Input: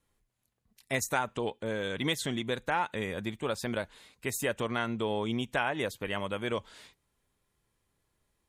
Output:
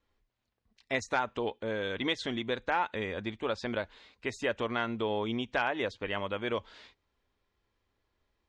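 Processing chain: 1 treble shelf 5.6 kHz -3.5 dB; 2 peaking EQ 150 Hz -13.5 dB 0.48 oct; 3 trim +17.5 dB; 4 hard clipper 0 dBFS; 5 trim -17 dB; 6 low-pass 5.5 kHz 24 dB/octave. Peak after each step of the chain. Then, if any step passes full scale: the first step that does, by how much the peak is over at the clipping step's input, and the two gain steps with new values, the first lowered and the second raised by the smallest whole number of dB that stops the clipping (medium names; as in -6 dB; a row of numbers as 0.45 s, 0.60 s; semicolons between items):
-14.5 dBFS, -14.0 dBFS, +3.5 dBFS, 0.0 dBFS, -17.0 dBFS, -16.5 dBFS; step 3, 3.5 dB; step 3 +13.5 dB, step 5 -13 dB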